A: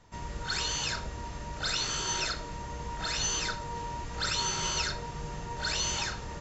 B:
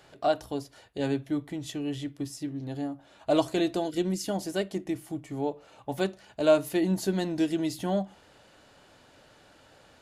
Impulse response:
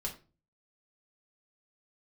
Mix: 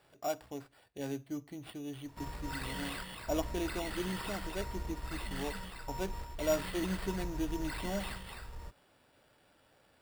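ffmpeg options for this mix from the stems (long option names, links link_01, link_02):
-filter_complex "[0:a]asubboost=boost=4:cutoff=76,alimiter=level_in=8dB:limit=-24dB:level=0:latency=1:release=423,volume=-8dB,adelay=2050,volume=-0.5dB,asplit=2[link_01][link_02];[link_02]volume=-4dB[link_03];[1:a]volume=-10dB,asplit=2[link_04][link_05];[link_05]apad=whole_len=372928[link_06];[link_01][link_06]sidechaingate=range=-33dB:threshold=-55dB:ratio=16:detection=peak[link_07];[link_03]aecho=0:1:256:1[link_08];[link_07][link_04][link_08]amix=inputs=3:normalize=0,acrusher=samples=7:mix=1:aa=0.000001"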